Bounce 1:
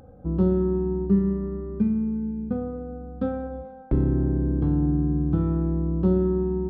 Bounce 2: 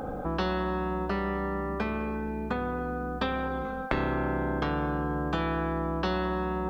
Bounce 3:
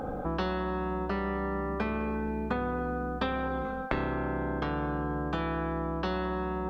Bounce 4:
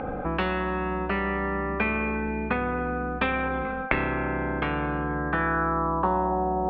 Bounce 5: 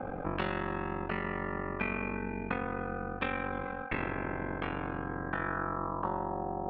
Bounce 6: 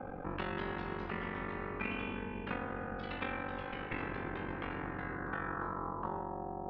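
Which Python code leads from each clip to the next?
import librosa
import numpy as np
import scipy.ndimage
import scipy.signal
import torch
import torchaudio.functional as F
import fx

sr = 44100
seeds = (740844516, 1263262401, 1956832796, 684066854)

y1 = fx.peak_eq(x, sr, hz=100.0, db=-12.5, octaves=1.2)
y1 = fx.spectral_comp(y1, sr, ratio=4.0)
y1 = F.gain(torch.from_numpy(y1), 2.5).numpy()
y2 = fx.rider(y1, sr, range_db=10, speed_s=0.5)
y2 = fx.high_shelf(y2, sr, hz=5300.0, db=-5.5)
y2 = F.gain(torch.from_numpy(y2), -1.5).numpy()
y3 = fx.filter_sweep_lowpass(y2, sr, from_hz=2400.0, to_hz=740.0, start_s=5.0, end_s=6.45, q=4.0)
y3 = F.gain(torch.from_numpy(y3), 3.0).numpy()
y4 = fx.rider(y3, sr, range_db=10, speed_s=2.0)
y4 = y4 * np.sin(2.0 * np.pi * 23.0 * np.arange(len(y4)) / sr)
y4 = F.gain(torch.from_numpy(y4), -5.5).numpy()
y5 = fx.echo_pitch(y4, sr, ms=239, semitones=2, count=3, db_per_echo=-6.0)
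y5 = fx.notch(y5, sr, hz=630.0, q=12.0)
y5 = F.gain(torch.from_numpy(y5), -5.5).numpy()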